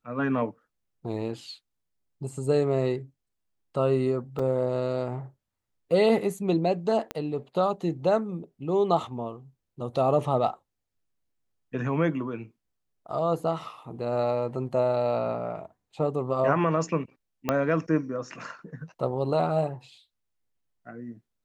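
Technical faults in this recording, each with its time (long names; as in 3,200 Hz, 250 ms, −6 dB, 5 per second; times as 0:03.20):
0:04.39: drop-out 4.2 ms
0:07.11: click −17 dBFS
0:17.49: click −11 dBFS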